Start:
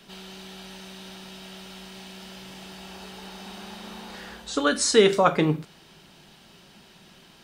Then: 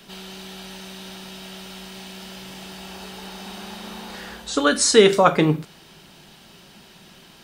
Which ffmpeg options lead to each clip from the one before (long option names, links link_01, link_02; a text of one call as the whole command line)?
ffmpeg -i in.wav -af "highshelf=frequency=11000:gain=5.5,volume=4dB" out.wav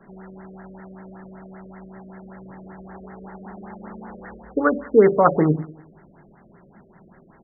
ffmpeg -i in.wav -af "aecho=1:1:96|192|288|384:0.126|0.0604|0.029|0.0139,afftfilt=real='re*lt(b*sr/1024,620*pow(2200/620,0.5+0.5*sin(2*PI*5.2*pts/sr)))':imag='im*lt(b*sr/1024,620*pow(2200/620,0.5+0.5*sin(2*PI*5.2*pts/sr)))':win_size=1024:overlap=0.75" out.wav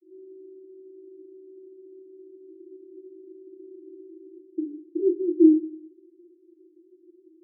ffmpeg -i in.wav -af "asuperpass=centerf=340:order=12:qfactor=4.9,volume=7dB" out.wav